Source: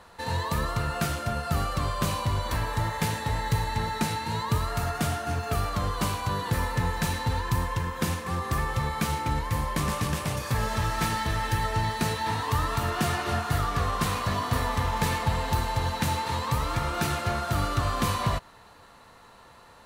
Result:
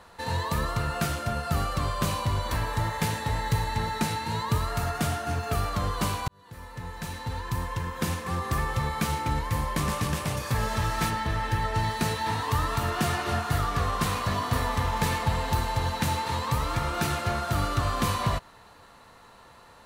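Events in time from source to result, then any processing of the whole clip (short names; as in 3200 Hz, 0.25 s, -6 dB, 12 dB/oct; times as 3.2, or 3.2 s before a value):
6.28–8.26 fade in
11.09–11.74 high shelf 3600 Hz -> 5400 Hz -8.5 dB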